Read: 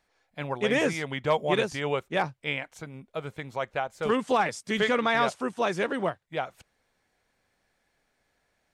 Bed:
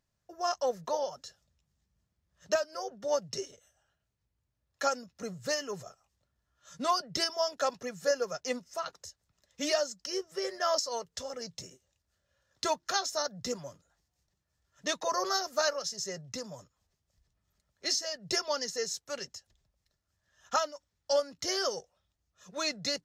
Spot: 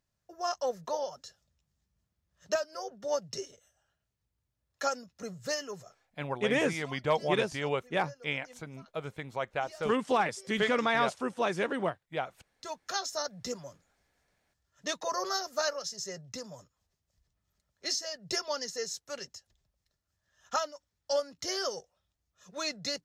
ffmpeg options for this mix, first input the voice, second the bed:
-filter_complex "[0:a]adelay=5800,volume=0.708[s0];[1:a]volume=7.94,afade=t=out:st=5.61:d=0.6:silence=0.1,afade=t=in:st=12.54:d=0.49:silence=0.105925[s1];[s0][s1]amix=inputs=2:normalize=0"

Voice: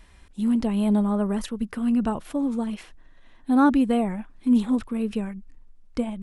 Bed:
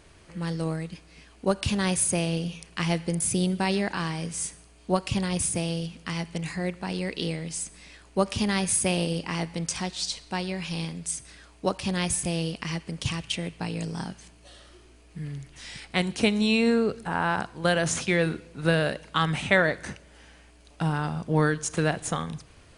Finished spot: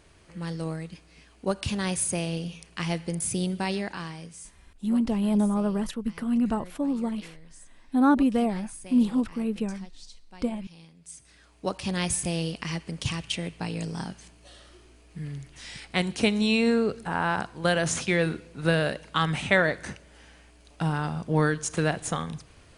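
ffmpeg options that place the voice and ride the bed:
-filter_complex "[0:a]adelay=4450,volume=0.794[s0];[1:a]volume=5.96,afade=t=out:st=3.66:d=0.91:silence=0.158489,afade=t=in:st=10.98:d=1.03:silence=0.11885[s1];[s0][s1]amix=inputs=2:normalize=0"

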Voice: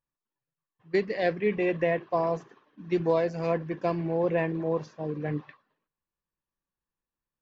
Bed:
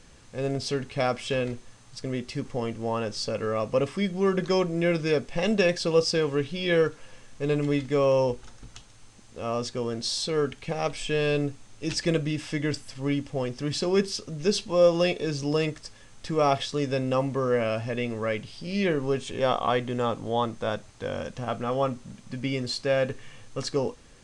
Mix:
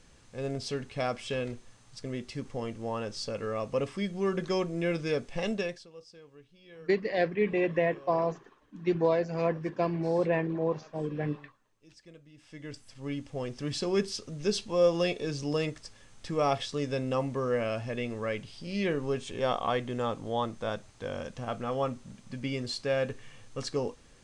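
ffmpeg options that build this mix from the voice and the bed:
-filter_complex "[0:a]adelay=5950,volume=0.891[s0];[1:a]volume=7.94,afade=t=out:st=5.42:d=0.45:silence=0.0749894,afade=t=in:st=12.32:d=1.33:silence=0.0668344[s1];[s0][s1]amix=inputs=2:normalize=0"

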